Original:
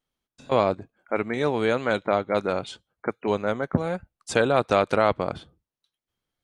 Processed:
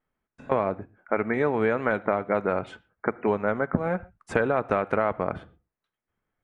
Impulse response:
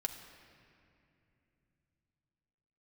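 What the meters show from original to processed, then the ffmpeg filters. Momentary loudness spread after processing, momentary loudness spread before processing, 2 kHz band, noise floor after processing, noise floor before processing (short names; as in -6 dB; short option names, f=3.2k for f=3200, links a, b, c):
8 LU, 12 LU, -0.5 dB, under -85 dBFS, under -85 dBFS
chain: -filter_complex "[0:a]highshelf=f=2.8k:t=q:w=1.5:g=-12,acompressor=threshold=-23dB:ratio=6,asplit=2[a][b];[1:a]atrim=start_sample=2205,atrim=end_sample=6174,lowpass=3.2k[c];[b][c]afir=irnorm=-1:irlink=0,volume=-5.5dB[d];[a][d]amix=inputs=2:normalize=0"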